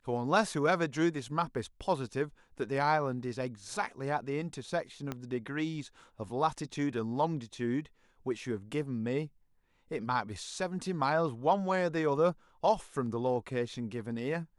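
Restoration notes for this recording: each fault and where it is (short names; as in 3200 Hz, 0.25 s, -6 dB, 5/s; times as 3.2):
5.12 pop -21 dBFS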